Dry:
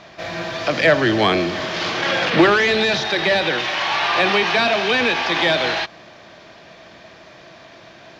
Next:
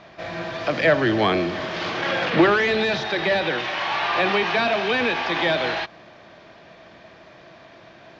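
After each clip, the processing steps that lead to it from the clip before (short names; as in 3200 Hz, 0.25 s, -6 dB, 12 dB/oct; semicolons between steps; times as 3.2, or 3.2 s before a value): LPF 2800 Hz 6 dB/oct; gain -2.5 dB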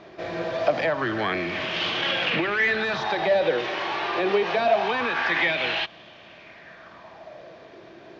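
compressor 4:1, threshold -22 dBFS, peak gain reduction 9.5 dB; LFO bell 0.25 Hz 370–3100 Hz +12 dB; gain -3 dB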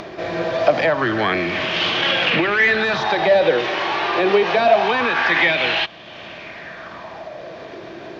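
upward compressor, threshold -34 dBFS; gain +6.5 dB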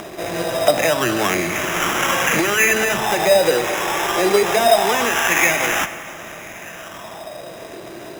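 sample-rate reducer 4400 Hz, jitter 0%; plate-style reverb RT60 3 s, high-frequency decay 0.75×, DRR 11 dB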